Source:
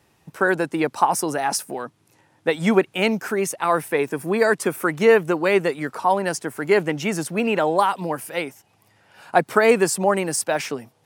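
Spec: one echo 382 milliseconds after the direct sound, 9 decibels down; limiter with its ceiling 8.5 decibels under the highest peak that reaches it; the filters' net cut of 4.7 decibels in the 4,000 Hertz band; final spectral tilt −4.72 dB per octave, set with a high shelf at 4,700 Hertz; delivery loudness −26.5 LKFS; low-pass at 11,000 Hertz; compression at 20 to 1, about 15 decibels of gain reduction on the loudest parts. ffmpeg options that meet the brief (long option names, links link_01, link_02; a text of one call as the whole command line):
ffmpeg -i in.wav -af "lowpass=11000,equalizer=frequency=4000:width_type=o:gain=-5,highshelf=frequency=4700:gain=-3.5,acompressor=threshold=-25dB:ratio=20,alimiter=limit=-21dB:level=0:latency=1,aecho=1:1:382:0.355,volume=5.5dB" out.wav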